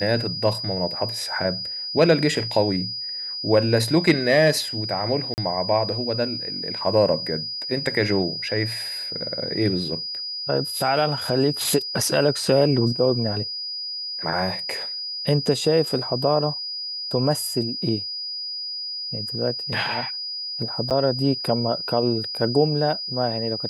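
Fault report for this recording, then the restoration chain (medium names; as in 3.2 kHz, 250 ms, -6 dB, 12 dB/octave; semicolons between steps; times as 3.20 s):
whine 4.9 kHz -28 dBFS
5.34–5.38 s: dropout 39 ms
20.90–20.91 s: dropout 7.7 ms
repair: band-stop 4.9 kHz, Q 30; interpolate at 5.34 s, 39 ms; interpolate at 20.90 s, 7.7 ms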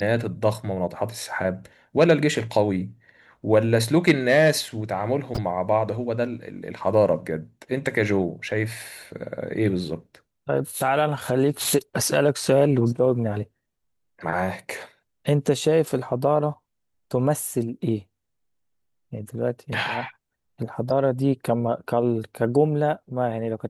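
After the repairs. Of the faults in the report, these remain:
nothing left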